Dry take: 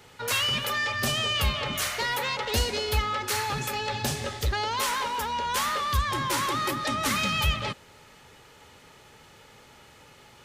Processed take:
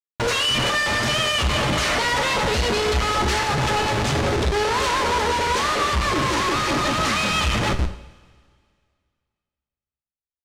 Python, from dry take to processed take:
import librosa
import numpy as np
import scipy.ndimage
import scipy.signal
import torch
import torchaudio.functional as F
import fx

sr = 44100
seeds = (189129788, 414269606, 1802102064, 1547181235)

y = fx.peak_eq(x, sr, hz=400.0, db=11.5, octaves=0.72, at=(4.3, 6.52))
y = fx.echo_split(y, sr, split_hz=350.0, low_ms=344, high_ms=98, feedback_pct=52, wet_db=-15.0)
y = fx.schmitt(y, sr, flips_db=-33.0)
y = scipy.signal.sosfilt(scipy.signal.butter(2, 6700.0, 'lowpass', fs=sr, output='sos'), y)
y = fx.peak_eq(y, sr, hz=77.0, db=6.0, octaves=0.25)
y = fx.rev_double_slope(y, sr, seeds[0], early_s=0.67, late_s=2.2, knee_db=-18, drr_db=7.0)
y = F.gain(torch.from_numpy(y), 7.0).numpy()